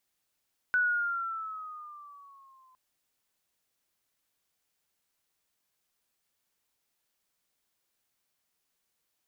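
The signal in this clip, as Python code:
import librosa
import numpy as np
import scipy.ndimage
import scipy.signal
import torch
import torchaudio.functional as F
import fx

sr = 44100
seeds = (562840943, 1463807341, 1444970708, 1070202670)

y = fx.riser_tone(sr, length_s=2.01, level_db=-22.0, wave='sine', hz=1490.0, rise_st=-6.5, swell_db=-36.5)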